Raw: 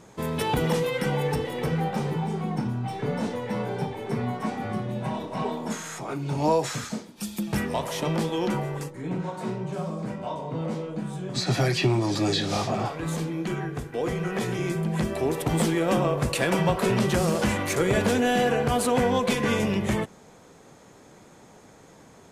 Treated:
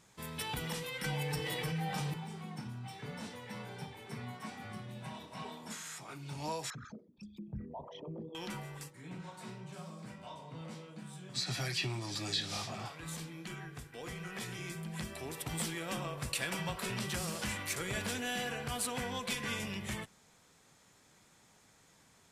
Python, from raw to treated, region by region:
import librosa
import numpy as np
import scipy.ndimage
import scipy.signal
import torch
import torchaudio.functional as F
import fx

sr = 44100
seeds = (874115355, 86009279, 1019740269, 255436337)

y = fx.chain(x, sr, fx.comb(ms=6.5, depth=0.7),
    fx.env_flatten(amount_pct=70), at=(1.04, 2.14))
y = fx.chain(y, sr, fx.envelope_sharpen(power=3.0),
    fx.air_absorb(metres=220.0), at=(6.7, 8.35))
y = fx.tone_stack(y, sr, knobs='5-5-5')
y = fx.notch(y, sr, hz=6500.0, q=17.0)
y = y * librosa.db_to_amplitude(1.0)